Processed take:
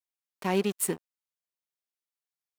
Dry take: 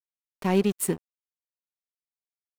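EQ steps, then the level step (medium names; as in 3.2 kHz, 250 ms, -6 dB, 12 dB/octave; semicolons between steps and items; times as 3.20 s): bass shelf 95 Hz -11.5 dB; bass shelf 480 Hz -4.5 dB; 0.0 dB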